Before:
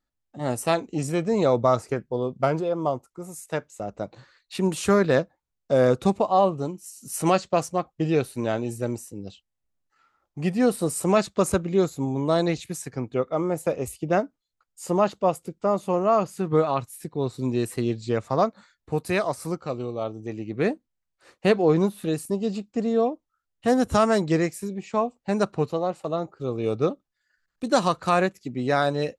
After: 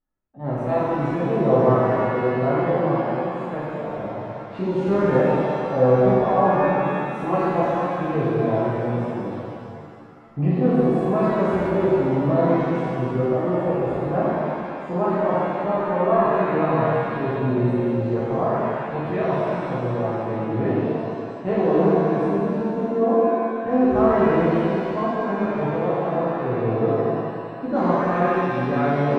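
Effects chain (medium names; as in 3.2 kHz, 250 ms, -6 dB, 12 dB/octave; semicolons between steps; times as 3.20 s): recorder AGC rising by 7.9 dB/s; transient shaper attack -3 dB, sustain +4 dB; low-pass 1.2 kHz 12 dB/octave; pitch-shifted reverb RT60 2.3 s, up +7 st, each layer -8 dB, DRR -10 dB; trim -6.5 dB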